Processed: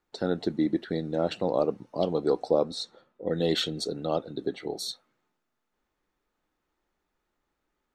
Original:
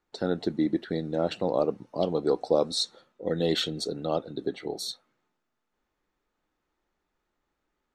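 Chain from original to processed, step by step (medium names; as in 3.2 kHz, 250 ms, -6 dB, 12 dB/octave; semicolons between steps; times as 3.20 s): 2.51–3.33 s: treble shelf 3.2 kHz -11.5 dB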